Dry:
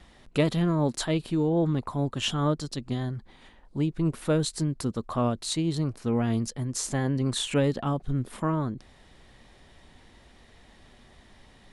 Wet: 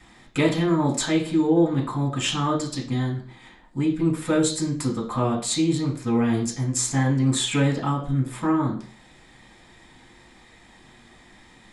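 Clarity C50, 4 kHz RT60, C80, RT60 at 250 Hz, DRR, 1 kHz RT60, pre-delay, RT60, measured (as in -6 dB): 9.5 dB, 0.40 s, 13.5 dB, 0.45 s, -4.5 dB, 0.45 s, 3 ms, 0.45 s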